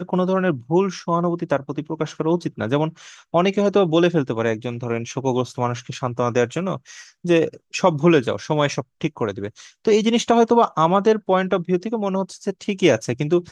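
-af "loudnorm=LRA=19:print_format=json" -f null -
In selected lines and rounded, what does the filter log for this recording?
"input_i" : "-20.7",
"input_tp" : "-2.3",
"input_lra" : "3.5",
"input_thresh" : "-30.9",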